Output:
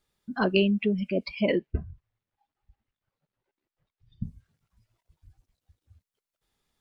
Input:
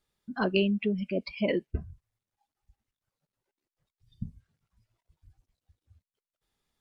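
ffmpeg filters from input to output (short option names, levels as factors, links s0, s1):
-filter_complex "[0:a]asettb=1/sr,asplit=3[s0][s1][s2];[s0]atrim=end=1.554[s3];[s1]atrim=start=1.55:end=4.24,asetpts=PTS-STARTPTS,afade=t=in:d=0.004:c=qsin,afade=t=out:st=2.686:d=0.004:c=qsin,lowpass=3300[s4];[s2]atrim=start=4.236[s5];[s3][s4]acrossfade=d=0.004:c1=hsin:c2=qsin[s6];[s6][s5]acrossfade=d=0.004:c1=qsin:c2=hsin,volume=1.41"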